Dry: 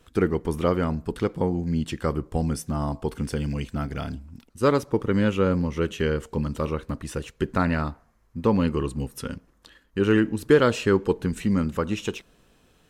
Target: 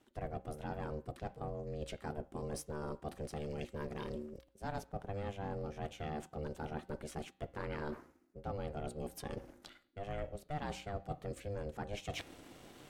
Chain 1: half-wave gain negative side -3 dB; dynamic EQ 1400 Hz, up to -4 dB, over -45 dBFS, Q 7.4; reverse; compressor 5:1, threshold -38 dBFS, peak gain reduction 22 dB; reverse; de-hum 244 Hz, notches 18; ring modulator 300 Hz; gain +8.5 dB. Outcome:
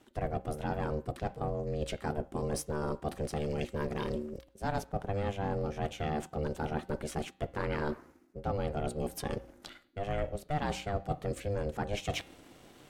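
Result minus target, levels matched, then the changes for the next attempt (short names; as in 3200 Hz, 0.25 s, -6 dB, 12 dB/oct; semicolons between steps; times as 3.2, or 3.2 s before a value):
compressor: peak gain reduction -7.5 dB
change: compressor 5:1, threshold -47.5 dBFS, peak gain reduction 29.5 dB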